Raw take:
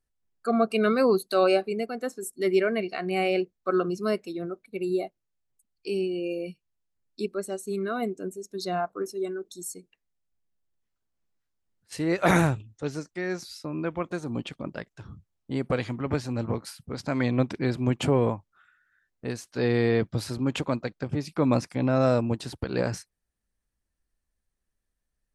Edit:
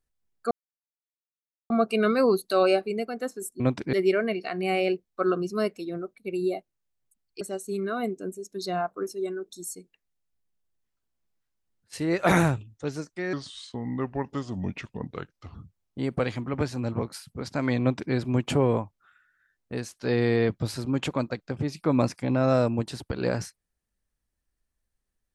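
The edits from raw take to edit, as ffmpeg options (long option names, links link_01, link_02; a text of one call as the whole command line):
ffmpeg -i in.wav -filter_complex "[0:a]asplit=7[link_01][link_02][link_03][link_04][link_05][link_06][link_07];[link_01]atrim=end=0.51,asetpts=PTS-STARTPTS,afade=type=out:start_time=0.506:duration=0.004:curve=hsin,apad=pad_dur=1.19[link_08];[link_02]atrim=start=0.51:end=2.412,asetpts=PTS-STARTPTS,afade=type=in:duration=0.004:curve=hsin[link_09];[link_03]atrim=start=17.328:end=17.662[link_10];[link_04]atrim=start=2.408:end=5.892[link_11];[link_05]atrim=start=7.398:end=13.324[link_12];[link_06]atrim=start=13.32:end=15.07,asetpts=PTS-STARTPTS,asetrate=34839,aresample=44100[link_13];[link_07]atrim=start=15.066[link_14];[link_08][link_09]concat=n=2:v=0:a=1[link_15];[link_15][link_10]acrossfade=duration=0.004:curve1=hsin:curve2=hsin[link_16];[link_16][link_11]acrossfade=duration=0.004:curve1=hsin:curve2=hsin[link_17];[link_17][link_12]acrossfade=duration=0.004:curve1=hsin:curve2=hsin[link_18];[link_18][link_13]acrossfade=duration=0.004:curve1=hsin:curve2=hsin[link_19];[link_19][link_14]acrossfade=duration=0.004:curve1=hsin:curve2=hsin" out.wav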